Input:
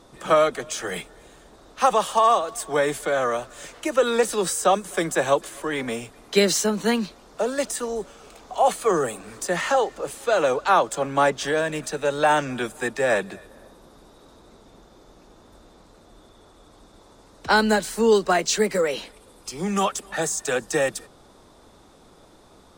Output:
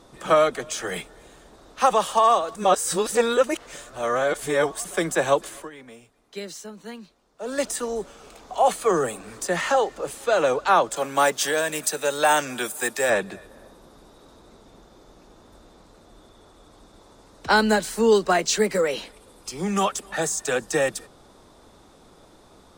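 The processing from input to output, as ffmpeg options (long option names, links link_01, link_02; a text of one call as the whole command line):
ffmpeg -i in.wav -filter_complex "[0:a]asettb=1/sr,asplit=3[link_01][link_02][link_03];[link_01]atrim=end=10.964[link_04];[link_02]atrim=start=10.96:end=13.1,asetpts=PTS-STARTPTS,afade=type=in:duration=0.004:curve=qsin,afade=type=out:start_time=2.136:duration=0.004:curve=qsin,aemphasis=mode=production:type=bsi[link_05];[link_03]atrim=start=13.096[link_06];[link_04][link_05]acrossfade=duration=0.004:curve1=hsin:curve2=qsin[link_07];[link_07][link_06]acrossfade=duration=0.004:curve1=qsin:curve2=hsin,asplit=5[link_08][link_09][link_10][link_11][link_12];[link_08]atrim=end=2.552[link_13];[link_09]atrim=start=2.548:end=4.852,asetpts=PTS-STARTPTS,areverse[link_14];[link_10]atrim=start=4.848:end=5.7,asetpts=PTS-STARTPTS,afade=type=out:start_time=0.702:duration=0.15:silence=0.149624[link_15];[link_11]atrim=start=5.7:end=7.4,asetpts=PTS-STARTPTS,volume=-16.5dB[link_16];[link_12]atrim=start=7.4,asetpts=PTS-STARTPTS,afade=type=in:duration=0.15:silence=0.149624[link_17];[link_13][link_14]acrossfade=duration=0.004:curve1=hsin:curve2=hsin[link_18];[link_15][link_16][link_17]concat=n=3:v=0:a=1[link_19];[link_18][link_19]acrossfade=duration=0.004:curve1=hsin:curve2=hsin" out.wav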